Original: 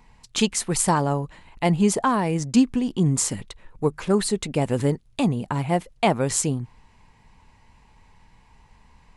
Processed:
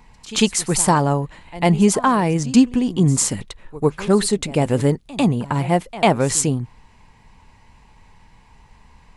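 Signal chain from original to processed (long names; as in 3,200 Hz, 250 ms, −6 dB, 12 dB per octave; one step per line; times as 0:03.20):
echo ahead of the sound 98 ms −18 dB
level +4.5 dB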